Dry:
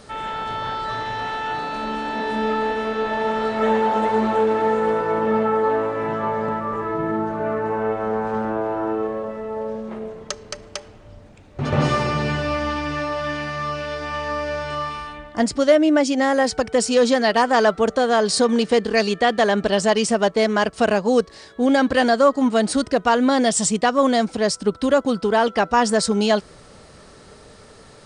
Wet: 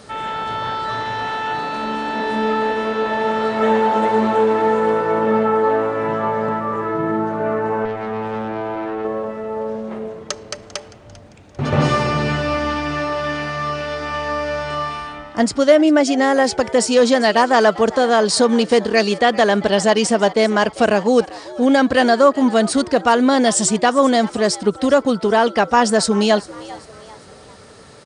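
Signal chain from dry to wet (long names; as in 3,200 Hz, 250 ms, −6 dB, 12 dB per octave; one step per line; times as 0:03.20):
high-pass filter 63 Hz
0:07.85–0:09.05: tube saturation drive 23 dB, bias 0.45
on a send: echo with shifted repeats 396 ms, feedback 40%, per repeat +110 Hz, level −19 dB
on the sum: level +3 dB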